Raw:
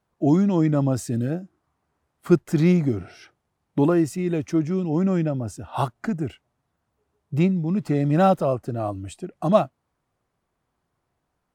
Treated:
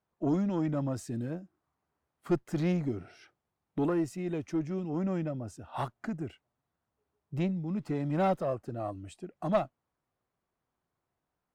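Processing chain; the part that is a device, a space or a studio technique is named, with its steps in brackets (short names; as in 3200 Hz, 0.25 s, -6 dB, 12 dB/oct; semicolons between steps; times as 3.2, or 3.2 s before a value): tube preamp driven hard (tube stage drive 10 dB, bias 0.45; low shelf 150 Hz -4 dB; high shelf 6700 Hz -5.5 dB); gain -6.5 dB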